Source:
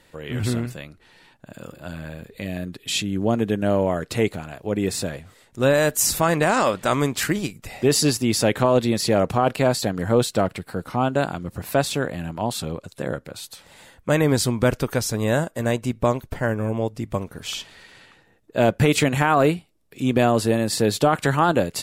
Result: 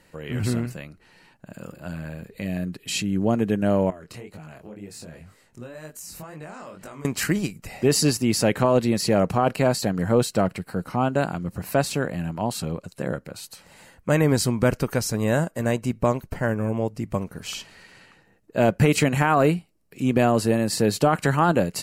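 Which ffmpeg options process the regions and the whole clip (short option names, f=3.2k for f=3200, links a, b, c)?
-filter_complex "[0:a]asettb=1/sr,asplit=3[a][b][c];[a]atrim=end=3.904[d];[b]atrim=start=3.9:end=7.05,asetpts=PTS-STARTPTS,afade=t=in:d=0.004:c=qsin,afade=t=out:st=3.146:d=0.004:c=qsin,acompressor=threshold=-33dB:ratio=5:attack=3.2:release=140:knee=1:detection=peak,flanger=delay=19:depth=6.1:speed=2[e];[c]atrim=start=7.046[f];[d][e]acrossfade=d=0.004:c1=hsin:c2=qsin[g];[g][f]acrossfade=d=0.004:c1=qsin:c2=hsin,equalizer=f=180:w=3:g=5,bandreject=f=3.5k:w=5.6,volume=-1.5dB"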